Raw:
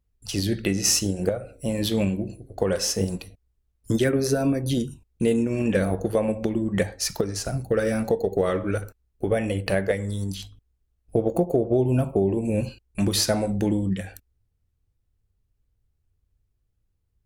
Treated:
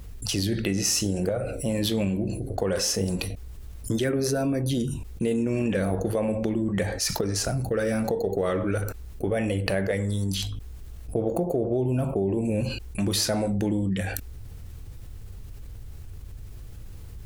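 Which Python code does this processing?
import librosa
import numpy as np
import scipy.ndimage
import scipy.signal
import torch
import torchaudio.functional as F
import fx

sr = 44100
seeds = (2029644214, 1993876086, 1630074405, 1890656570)

y = fx.env_flatten(x, sr, amount_pct=70)
y = y * librosa.db_to_amplitude(-6.0)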